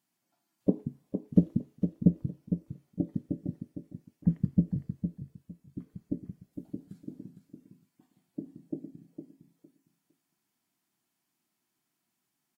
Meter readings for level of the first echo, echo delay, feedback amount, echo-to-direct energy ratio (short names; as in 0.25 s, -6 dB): -8.0 dB, 0.458 s, 20%, -8.0 dB